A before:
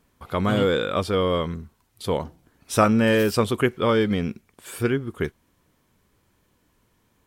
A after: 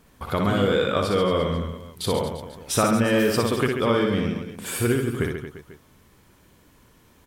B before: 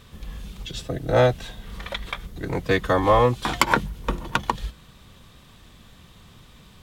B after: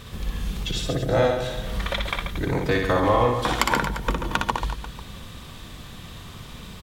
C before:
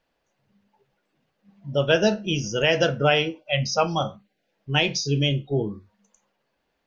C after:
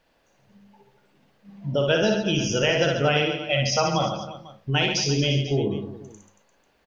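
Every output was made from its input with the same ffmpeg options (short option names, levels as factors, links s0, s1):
-filter_complex "[0:a]acompressor=threshold=0.0178:ratio=2,asplit=2[s0][s1];[s1]aecho=0:1:60|135|228.8|345.9|492.4:0.631|0.398|0.251|0.158|0.1[s2];[s0][s2]amix=inputs=2:normalize=0,volume=2.37"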